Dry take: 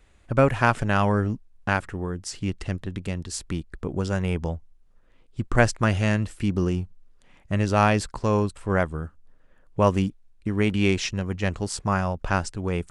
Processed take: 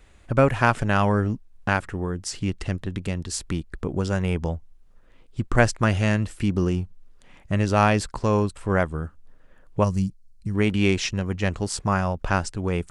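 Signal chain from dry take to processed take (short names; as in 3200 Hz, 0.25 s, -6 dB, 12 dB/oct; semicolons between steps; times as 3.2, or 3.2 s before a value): spectral gain 9.84–10.55, 200–4000 Hz -13 dB; in parallel at -3 dB: compressor, threshold -35 dBFS, peak gain reduction 21 dB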